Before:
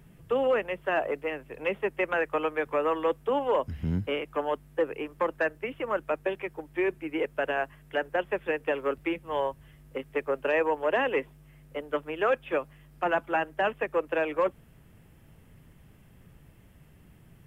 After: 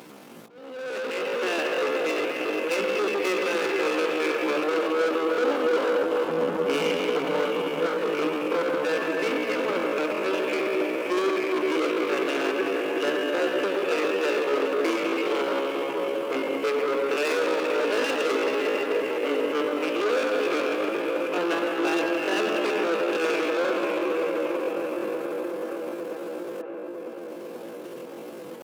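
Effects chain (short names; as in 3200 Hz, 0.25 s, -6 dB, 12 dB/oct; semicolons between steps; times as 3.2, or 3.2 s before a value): band shelf 1000 Hz -14 dB; Schroeder reverb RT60 3 s, combs from 29 ms, DRR 0.5 dB; sample leveller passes 2; added noise brown -37 dBFS; soft clip -29 dBFS, distortion -8 dB; notch 1900 Hz, Q 17; hum 60 Hz, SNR 19 dB; auto swell 0.608 s; HPF 240 Hz 24 dB/oct; dark delay 0.293 s, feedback 84%, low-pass 1100 Hz, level -7.5 dB; tempo 0.61×; dynamic EQ 1300 Hz, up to +5 dB, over -49 dBFS, Q 1.6; gain +5 dB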